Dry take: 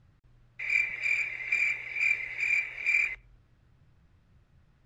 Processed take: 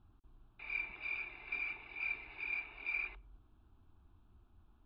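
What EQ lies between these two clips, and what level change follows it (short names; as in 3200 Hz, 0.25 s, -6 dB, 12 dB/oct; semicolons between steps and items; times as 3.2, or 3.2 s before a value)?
synth low-pass 3800 Hz, resonance Q 2.1; air absorption 450 m; fixed phaser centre 530 Hz, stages 6; +2.0 dB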